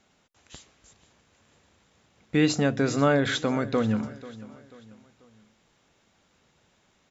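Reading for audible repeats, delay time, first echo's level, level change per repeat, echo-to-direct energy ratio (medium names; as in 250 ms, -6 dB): 3, 489 ms, -18.0 dB, -7.5 dB, -17.0 dB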